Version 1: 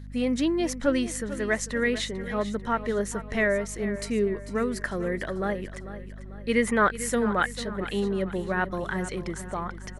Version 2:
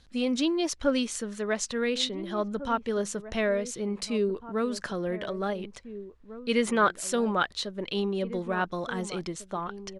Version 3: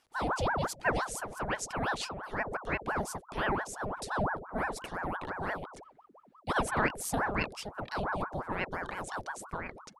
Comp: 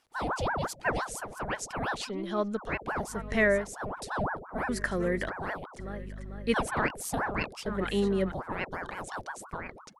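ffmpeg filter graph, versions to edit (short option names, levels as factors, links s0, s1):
-filter_complex "[0:a]asplit=4[s0][s1][s2][s3];[2:a]asplit=6[s4][s5][s6][s7][s8][s9];[s4]atrim=end=2.11[s10];[1:a]atrim=start=2.07:end=2.6[s11];[s5]atrim=start=2.56:end=3.22[s12];[s0]atrim=start=3.06:end=3.71[s13];[s6]atrim=start=3.55:end=4.692[s14];[s1]atrim=start=4.688:end=5.292[s15];[s7]atrim=start=5.288:end=5.792[s16];[s2]atrim=start=5.788:end=6.542[s17];[s8]atrim=start=6.538:end=7.662[s18];[s3]atrim=start=7.658:end=8.322[s19];[s9]atrim=start=8.318[s20];[s10][s11]acrossfade=d=0.04:c1=tri:c2=tri[s21];[s21][s12]acrossfade=d=0.04:c1=tri:c2=tri[s22];[s22][s13]acrossfade=d=0.16:c1=tri:c2=tri[s23];[s23][s14]acrossfade=d=0.16:c1=tri:c2=tri[s24];[s24][s15]acrossfade=d=0.004:c1=hsin:c2=hsin[s25];[s25][s16]acrossfade=d=0.004:c1=hsin:c2=hsin[s26];[s26][s17]acrossfade=d=0.004:c1=hsin:c2=hsin[s27];[s27][s18]acrossfade=d=0.004:c1=hsin:c2=hsin[s28];[s28][s19]acrossfade=d=0.004:c1=hsin:c2=hsin[s29];[s29][s20]acrossfade=d=0.004:c1=hsin:c2=hsin"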